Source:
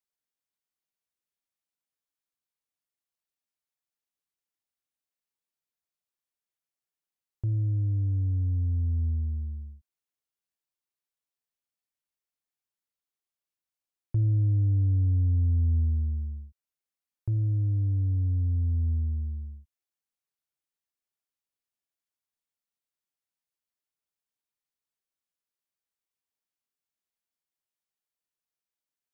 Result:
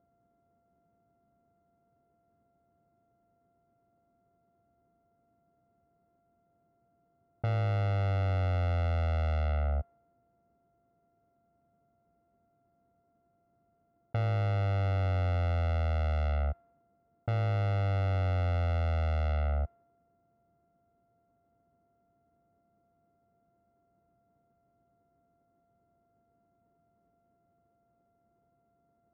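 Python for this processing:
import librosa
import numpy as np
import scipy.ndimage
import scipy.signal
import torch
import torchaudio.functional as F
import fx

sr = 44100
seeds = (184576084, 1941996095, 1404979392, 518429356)

y = np.r_[np.sort(x[:len(x) // 64 * 64].reshape(-1, 64), axis=1).ravel(), x[len(x) // 64 * 64:]]
y = fx.env_lowpass(y, sr, base_hz=350.0, full_db=-26.5)
y = scipy.signal.sosfilt(scipy.signal.butter(2, 70.0, 'highpass', fs=sr, output='sos'), y)
y = fx.air_absorb(y, sr, metres=320.0)
y = fx.env_flatten(y, sr, amount_pct=100)
y = y * librosa.db_to_amplitude(-5.0)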